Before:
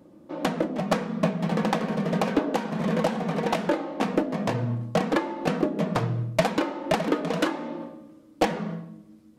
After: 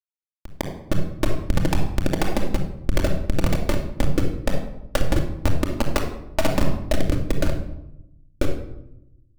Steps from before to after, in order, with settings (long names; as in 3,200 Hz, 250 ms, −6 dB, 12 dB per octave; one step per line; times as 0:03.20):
fade in at the beginning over 1.29 s
high-pass filter 260 Hz 24 dB per octave
low-shelf EQ 350 Hz −7 dB
in parallel at −3 dB: downward compressor 10 to 1, threshold −33 dBFS, peak gain reduction 16 dB
on the sum: comparator with hysteresis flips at −18.5 dBFS
power curve on the samples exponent 3
rotating-speaker cabinet horn 8 Hz, later 0.7 Hz, at 0:05.42
rectangular room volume 2,400 cubic metres, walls furnished, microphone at 2.5 metres
boost into a limiter +23.5 dB
level −6 dB